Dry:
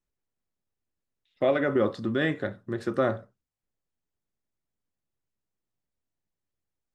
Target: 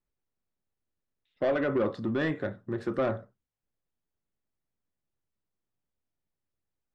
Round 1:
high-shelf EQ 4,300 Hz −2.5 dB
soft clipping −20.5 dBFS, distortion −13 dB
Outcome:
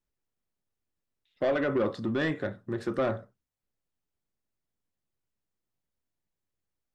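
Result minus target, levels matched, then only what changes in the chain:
8,000 Hz band +6.0 dB
change: high-shelf EQ 4,300 Hz −12 dB

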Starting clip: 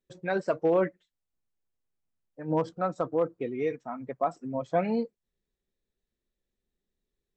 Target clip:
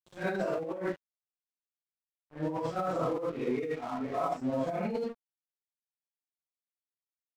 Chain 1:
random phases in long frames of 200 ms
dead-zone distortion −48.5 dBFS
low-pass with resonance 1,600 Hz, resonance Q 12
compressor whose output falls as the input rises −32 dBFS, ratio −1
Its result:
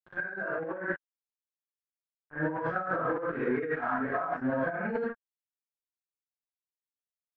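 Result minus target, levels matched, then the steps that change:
2,000 Hz band +9.0 dB
remove: low-pass with resonance 1,600 Hz, resonance Q 12

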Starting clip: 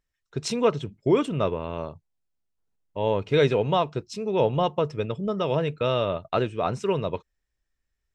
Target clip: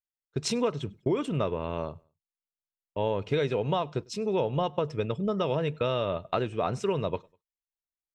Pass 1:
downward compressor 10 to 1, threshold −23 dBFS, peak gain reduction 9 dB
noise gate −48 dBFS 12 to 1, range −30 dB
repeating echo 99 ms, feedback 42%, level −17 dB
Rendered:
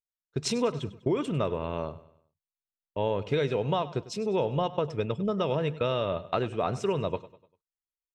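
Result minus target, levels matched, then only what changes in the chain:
echo-to-direct +11 dB
change: repeating echo 99 ms, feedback 42%, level −28 dB

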